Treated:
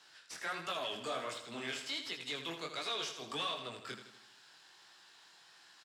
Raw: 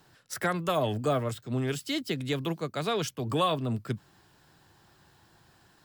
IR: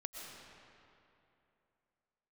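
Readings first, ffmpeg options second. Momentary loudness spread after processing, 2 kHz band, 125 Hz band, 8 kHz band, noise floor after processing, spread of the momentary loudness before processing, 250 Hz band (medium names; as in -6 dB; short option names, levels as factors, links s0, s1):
21 LU, -4.5 dB, -24.5 dB, -6.5 dB, -62 dBFS, 5 LU, -17.0 dB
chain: -af "aderivative,acompressor=threshold=0.00708:ratio=6,aeval=exprs='(tanh(178*val(0)+0.2)-tanh(0.2))/178':c=same,flanger=delay=16.5:depth=7.4:speed=1.4,highpass=140,lowpass=4100,aecho=1:1:80|160|240|320|400|480:0.355|0.185|0.0959|0.0499|0.0259|0.0135,volume=7.5"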